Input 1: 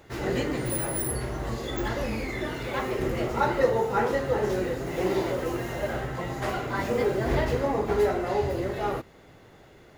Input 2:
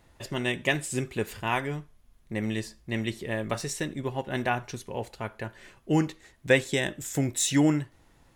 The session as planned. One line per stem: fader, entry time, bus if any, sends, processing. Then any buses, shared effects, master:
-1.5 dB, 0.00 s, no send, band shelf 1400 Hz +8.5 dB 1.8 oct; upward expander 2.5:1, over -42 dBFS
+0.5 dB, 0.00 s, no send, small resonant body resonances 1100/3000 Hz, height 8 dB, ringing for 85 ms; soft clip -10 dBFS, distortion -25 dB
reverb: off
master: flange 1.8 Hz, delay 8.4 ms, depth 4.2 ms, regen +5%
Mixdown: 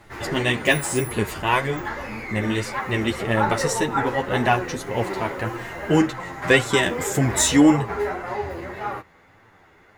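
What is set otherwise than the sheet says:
stem 1: missing upward expander 2.5:1, over -42 dBFS; stem 2 +0.5 dB -> +10.5 dB

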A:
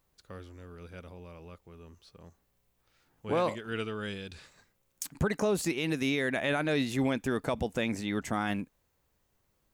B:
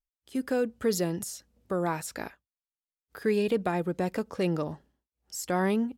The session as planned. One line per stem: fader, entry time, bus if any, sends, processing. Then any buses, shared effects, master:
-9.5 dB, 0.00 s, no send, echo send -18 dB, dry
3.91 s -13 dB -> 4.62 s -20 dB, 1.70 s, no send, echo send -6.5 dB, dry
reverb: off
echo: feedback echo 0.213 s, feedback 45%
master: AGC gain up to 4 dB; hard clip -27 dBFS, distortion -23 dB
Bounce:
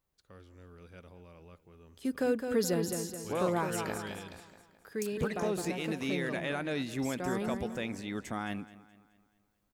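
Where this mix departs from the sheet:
stem B -13.0 dB -> -6.5 dB; master: missing hard clip -27 dBFS, distortion -23 dB

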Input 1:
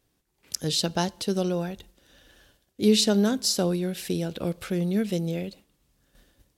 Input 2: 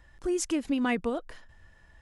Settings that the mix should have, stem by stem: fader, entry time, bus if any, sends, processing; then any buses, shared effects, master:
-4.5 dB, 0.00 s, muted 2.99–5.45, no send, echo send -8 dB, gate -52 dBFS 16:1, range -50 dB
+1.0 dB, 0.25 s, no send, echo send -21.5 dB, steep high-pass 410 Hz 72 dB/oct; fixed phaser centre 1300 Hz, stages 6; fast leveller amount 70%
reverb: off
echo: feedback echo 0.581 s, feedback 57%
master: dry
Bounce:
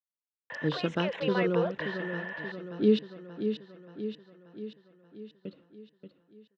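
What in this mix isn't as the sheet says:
stem 2: entry 0.25 s -> 0.50 s; master: extra speaker cabinet 140–3200 Hz, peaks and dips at 140 Hz +7 dB, 300 Hz +8 dB, 480 Hz +5 dB, 770 Hz -10 dB, 1300 Hz +9 dB, 2300 Hz -8 dB

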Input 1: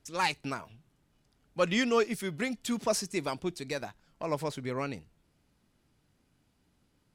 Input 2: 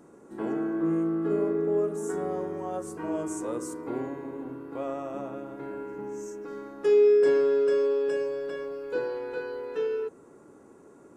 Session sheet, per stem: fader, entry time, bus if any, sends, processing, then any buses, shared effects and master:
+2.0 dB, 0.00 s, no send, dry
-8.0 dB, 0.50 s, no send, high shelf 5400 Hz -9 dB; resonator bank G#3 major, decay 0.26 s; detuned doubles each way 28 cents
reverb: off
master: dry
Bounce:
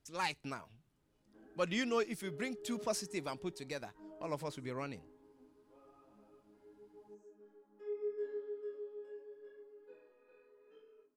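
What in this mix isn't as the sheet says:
stem 1 +2.0 dB -> -7.5 dB; stem 2: entry 0.50 s -> 0.95 s

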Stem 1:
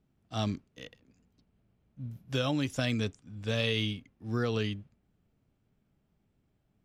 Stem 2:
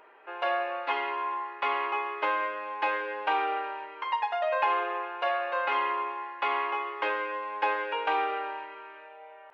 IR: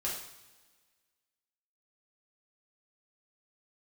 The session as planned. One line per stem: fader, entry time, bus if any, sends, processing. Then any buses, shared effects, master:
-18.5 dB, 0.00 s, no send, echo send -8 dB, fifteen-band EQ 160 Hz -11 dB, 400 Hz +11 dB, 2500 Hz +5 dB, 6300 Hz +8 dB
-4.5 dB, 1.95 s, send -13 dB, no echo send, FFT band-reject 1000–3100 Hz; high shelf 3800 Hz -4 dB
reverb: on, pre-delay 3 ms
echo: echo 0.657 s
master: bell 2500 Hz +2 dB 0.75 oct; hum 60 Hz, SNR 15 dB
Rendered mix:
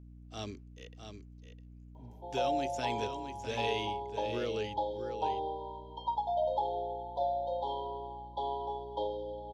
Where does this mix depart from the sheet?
stem 1 -18.5 dB -> -10.0 dB; master: missing bell 2500 Hz +2 dB 0.75 oct

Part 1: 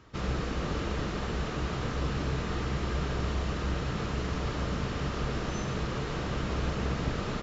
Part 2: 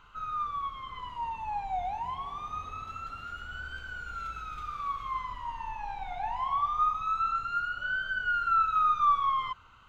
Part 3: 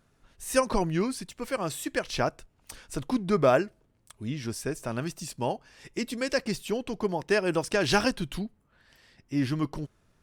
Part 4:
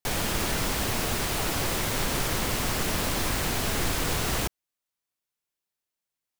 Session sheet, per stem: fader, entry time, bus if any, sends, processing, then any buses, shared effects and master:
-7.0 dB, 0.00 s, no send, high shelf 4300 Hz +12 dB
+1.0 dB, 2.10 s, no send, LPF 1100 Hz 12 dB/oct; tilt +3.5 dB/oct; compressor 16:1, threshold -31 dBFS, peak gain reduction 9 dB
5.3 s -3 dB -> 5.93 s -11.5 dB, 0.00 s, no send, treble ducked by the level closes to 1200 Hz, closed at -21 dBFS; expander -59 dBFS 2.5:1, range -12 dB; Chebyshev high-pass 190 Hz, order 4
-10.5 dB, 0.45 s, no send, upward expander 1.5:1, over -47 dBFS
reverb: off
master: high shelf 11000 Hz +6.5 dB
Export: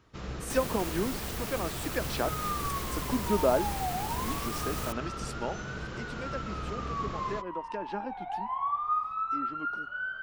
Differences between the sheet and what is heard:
stem 1: missing high shelf 4300 Hz +12 dB; stem 2: missing compressor 16:1, threshold -31 dBFS, peak gain reduction 9 dB

